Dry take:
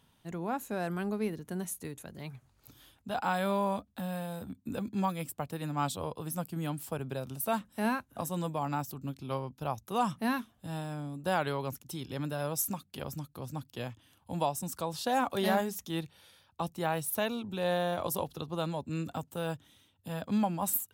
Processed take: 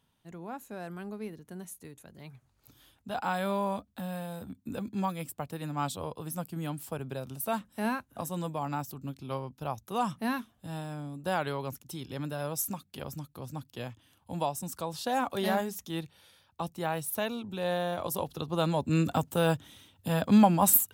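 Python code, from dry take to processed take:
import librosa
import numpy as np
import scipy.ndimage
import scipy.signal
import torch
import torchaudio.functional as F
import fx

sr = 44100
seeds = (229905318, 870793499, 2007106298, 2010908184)

y = fx.gain(x, sr, db=fx.line((1.92, -6.5), (3.16, -0.5), (18.08, -0.5), (18.94, 9.0)))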